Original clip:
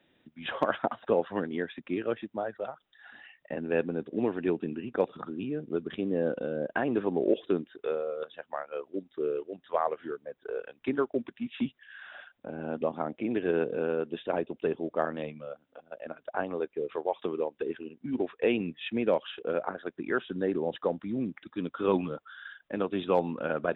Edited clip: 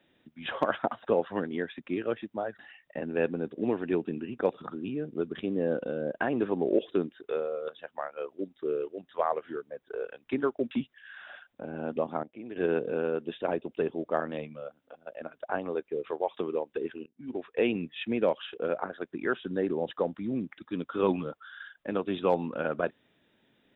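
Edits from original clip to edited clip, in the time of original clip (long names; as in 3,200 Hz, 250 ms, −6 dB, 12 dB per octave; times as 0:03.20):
0:02.59–0:03.14: remove
0:11.26–0:11.56: remove
0:13.08–0:13.41: clip gain −11.5 dB
0:17.91–0:18.49: fade in, from −23.5 dB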